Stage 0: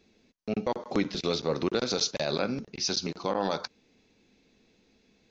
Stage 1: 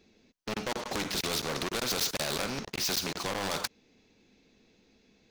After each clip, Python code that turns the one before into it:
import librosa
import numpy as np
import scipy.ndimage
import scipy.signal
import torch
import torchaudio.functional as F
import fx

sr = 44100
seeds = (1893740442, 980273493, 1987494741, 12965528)

y = fx.leveller(x, sr, passes=3)
y = fx.spectral_comp(y, sr, ratio=2.0)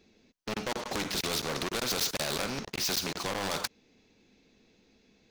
y = x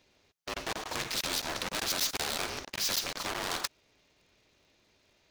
y = fx.low_shelf(x, sr, hz=330.0, db=-11.5)
y = y * np.sign(np.sin(2.0 * np.pi * 160.0 * np.arange(len(y)) / sr))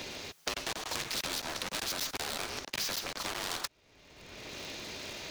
y = fx.band_squash(x, sr, depth_pct=100)
y = y * librosa.db_to_amplitude(-3.0)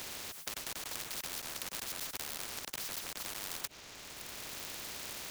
y = fx.spectral_comp(x, sr, ratio=4.0)
y = y * librosa.db_to_amplitude(-1.0)